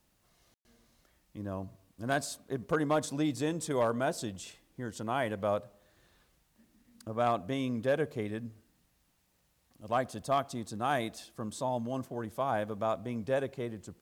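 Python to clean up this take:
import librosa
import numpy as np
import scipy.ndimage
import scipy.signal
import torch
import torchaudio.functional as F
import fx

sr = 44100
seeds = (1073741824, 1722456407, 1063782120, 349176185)

y = fx.fix_declip(x, sr, threshold_db=-20.0)
y = fx.fix_ambience(y, sr, seeds[0], print_start_s=9.12, print_end_s=9.62, start_s=0.54, end_s=0.65)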